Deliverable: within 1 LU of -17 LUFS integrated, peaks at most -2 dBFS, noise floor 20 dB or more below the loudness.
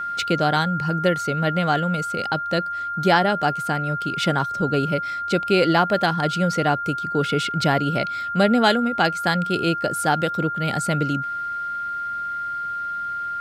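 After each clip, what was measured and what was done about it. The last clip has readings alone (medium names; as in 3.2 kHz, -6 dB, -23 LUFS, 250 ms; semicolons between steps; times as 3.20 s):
steady tone 1.4 kHz; tone level -25 dBFS; loudness -22.0 LUFS; peak level -4.0 dBFS; loudness target -17.0 LUFS
-> band-stop 1.4 kHz, Q 30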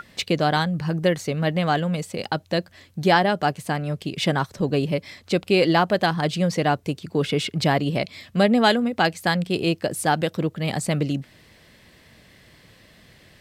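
steady tone not found; loudness -23.0 LUFS; peak level -4.5 dBFS; loudness target -17.0 LUFS
-> trim +6 dB; peak limiter -2 dBFS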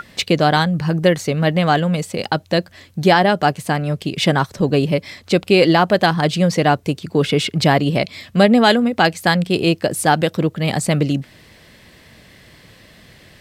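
loudness -17.0 LUFS; peak level -2.0 dBFS; noise floor -48 dBFS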